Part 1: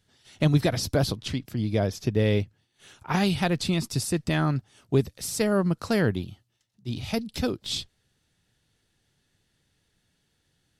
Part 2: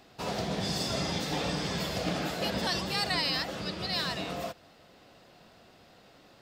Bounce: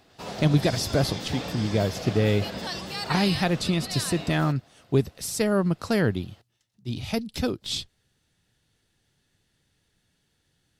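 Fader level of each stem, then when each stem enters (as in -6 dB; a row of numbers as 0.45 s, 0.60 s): +0.5 dB, -2.5 dB; 0.00 s, 0.00 s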